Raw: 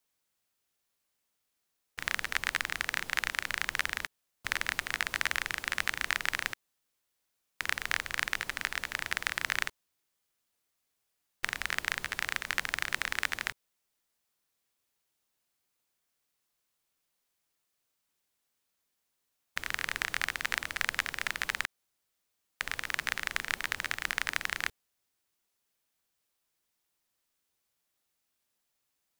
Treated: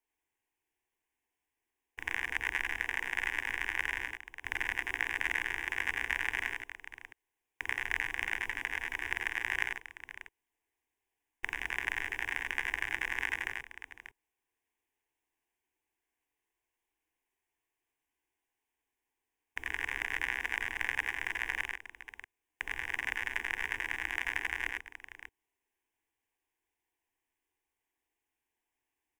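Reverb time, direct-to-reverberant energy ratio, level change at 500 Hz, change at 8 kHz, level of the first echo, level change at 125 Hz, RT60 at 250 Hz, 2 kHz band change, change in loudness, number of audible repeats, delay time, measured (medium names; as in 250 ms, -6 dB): no reverb, no reverb, -2.5 dB, -10.0 dB, -5.0 dB, -3.0 dB, no reverb, -0.5 dB, -1.5 dB, 2, 86 ms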